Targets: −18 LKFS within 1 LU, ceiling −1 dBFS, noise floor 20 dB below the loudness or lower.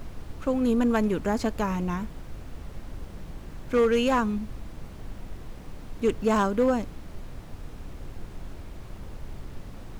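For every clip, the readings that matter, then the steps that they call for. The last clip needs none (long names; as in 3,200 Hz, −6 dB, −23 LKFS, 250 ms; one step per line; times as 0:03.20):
share of clipped samples 0.4%; peaks flattened at −15.5 dBFS; background noise floor −42 dBFS; target noise floor −46 dBFS; integrated loudness −25.5 LKFS; sample peak −15.5 dBFS; target loudness −18.0 LKFS
→ clipped peaks rebuilt −15.5 dBFS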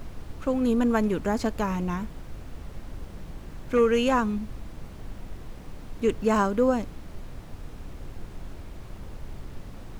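share of clipped samples 0.0%; background noise floor −42 dBFS; target noise floor −46 dBFS
→ noise reduction from a noise print 6 dB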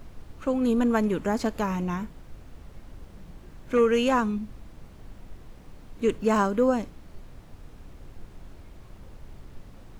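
background noise floor −48 dBFS; integrated loudness −25.5 LKFS; sample peak −11.5 dBFS; target loudness −18.0 LKFS
→ level +7.5 dB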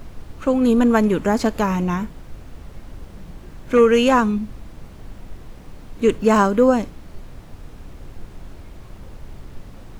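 integrated loudness −18.0 LKFS; sample peak −4.0 dBFS; background noise floor −41 dBFS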